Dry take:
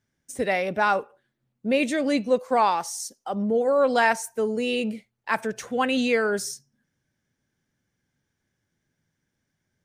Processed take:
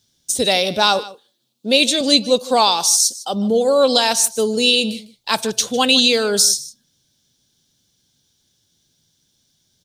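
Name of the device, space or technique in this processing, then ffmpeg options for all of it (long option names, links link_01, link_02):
over-bright horn tweeter: -filter_complex "[0:a]highshelf=frequency=2700:width_type=q:width=3:gain=11.5,alimiter=limit=-8.5dB:level=0:latency=1:release=323,asettb=1/sr,asplit=3[link_01][link_02][link_03];[link_01]atrim=end=0.994[link_04];[link_02]atrim=start=0.99:end=2.01,asetpts=PTS-STARTPTS,afade=type=in:duration=0.004:curve=qsin,afade=type=out:start_time=1.016:duration=0.004:curve=qsin,highpass=250[link_05];[link_03]atrim=start=2.006[link_06];[link_04][link_05]acrossfade=duration=0.004:curve1=hsin:curve2=qsin[link_07];[link_07][link_06]acrossfade=duration=0.004:curve1=qsin:curve2=hsin,aecho=1:1:153:0.126,volume=6.5dB"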